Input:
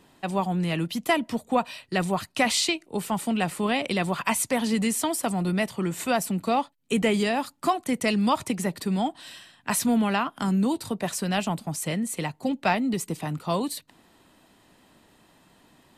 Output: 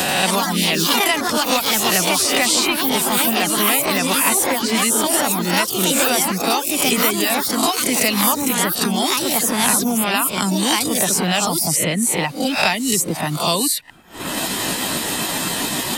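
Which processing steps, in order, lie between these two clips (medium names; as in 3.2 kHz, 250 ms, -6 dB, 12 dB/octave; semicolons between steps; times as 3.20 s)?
reverse spectral sustain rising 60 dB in 0.48 s; reverb removal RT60 0.61 s; expander -52 dBFS; treble shelf 3.2 kHz +12 dB; upward compressor, threshold -32 dBFS; ever faster or slower copies 85 ms, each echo +3 st, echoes 3; three bands compressed up and down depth 100%; trim +1.5 dB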